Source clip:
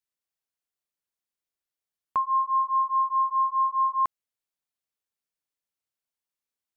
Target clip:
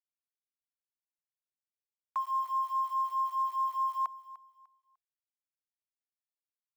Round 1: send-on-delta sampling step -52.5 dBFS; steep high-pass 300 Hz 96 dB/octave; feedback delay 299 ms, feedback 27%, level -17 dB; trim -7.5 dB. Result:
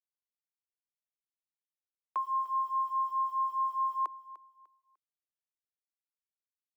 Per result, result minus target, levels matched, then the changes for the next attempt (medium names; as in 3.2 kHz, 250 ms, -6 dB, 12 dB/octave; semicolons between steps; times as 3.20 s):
500 Hz band +9.0 dB; send-on-delta sampling: distortion -12 dB
change: steep high-pass 680 Hz 96 dB/octave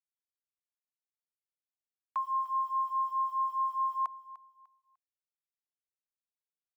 send-on-delta sampling: distortion -12 dB
change: send-on-delta sampling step -43 dBFS